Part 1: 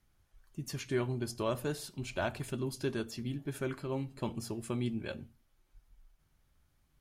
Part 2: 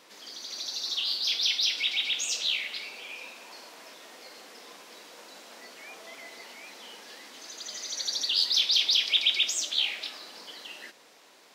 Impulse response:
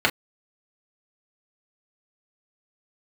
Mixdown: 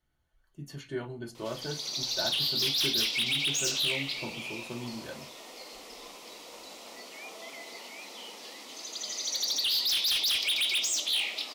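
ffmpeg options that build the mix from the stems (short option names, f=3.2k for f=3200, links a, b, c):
-filter_complex "[0:a]volume=-10dB,asplit=2[a][b];[b]volume=-11dB[c];[1:a]equalizer=f=1.6k:t=o:w=0.29:g=-14.5,volume=27.5dB,asoftclip=hard,volume=-27.5dB,adelay=1350,volume=2.5dB[d];[2:a]atrim=start_sample=2205[e];[c][e]afir=irnorm=-1:irlink=0[f];[a][d][f]amix=inputs=3:normalize=0"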